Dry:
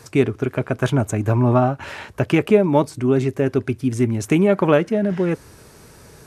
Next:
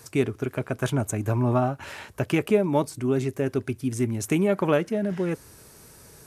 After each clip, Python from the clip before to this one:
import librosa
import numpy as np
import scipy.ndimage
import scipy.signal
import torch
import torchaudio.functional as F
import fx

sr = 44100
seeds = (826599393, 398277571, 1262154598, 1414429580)

y = fx.high_shelf(x, sr, hz=7300.0, db=12.0)
y = y * 10.0 ** (-6.5 / 20.0)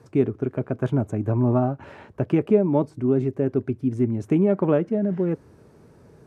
y = fx.bandpass_q(x, sr, hz=240.0, q=0.51)
y = y * 10.0 ** (4.0 / 20.0)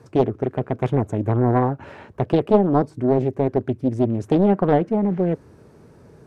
y = fx.doppler_dist(x, sr, depth_ms=0.72)
y = y * 10.0 ** (3.0 / 20.0)